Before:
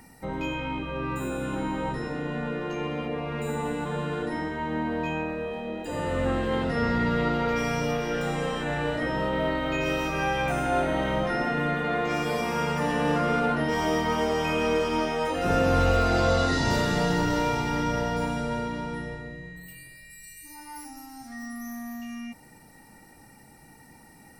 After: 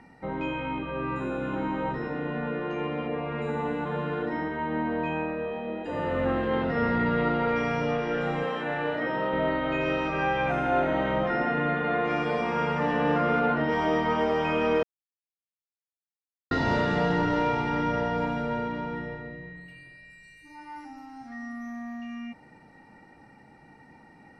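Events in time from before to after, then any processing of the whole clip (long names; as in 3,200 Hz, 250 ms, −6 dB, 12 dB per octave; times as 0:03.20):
0:08.44–0:09.33: high-pass filter 230 Hz 6 dB per octave
0:14.83–0:16.51: silence
whole clip: low-pass filter 2,600 Hz 12 dB per octave; low-shelf EQ 85 Hz −10.5 dB; level +1 dB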